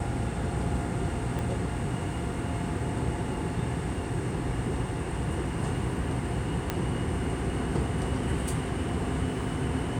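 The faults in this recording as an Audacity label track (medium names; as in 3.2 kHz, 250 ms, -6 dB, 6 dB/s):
1.390000	1.390000	pop
6.700000	6.700000	pop -13 dBFS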